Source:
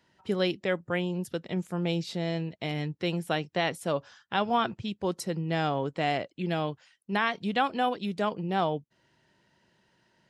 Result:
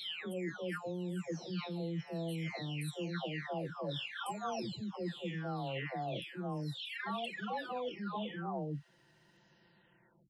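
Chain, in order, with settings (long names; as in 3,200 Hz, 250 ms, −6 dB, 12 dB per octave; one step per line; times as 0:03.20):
every frequency bin delayed by itself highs early, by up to 934 ms
reversed playback
downward compressor 6 to 1, threshold −40 dBFS, peak gain reduction 16.5 dB
reversed playback
level +3 dB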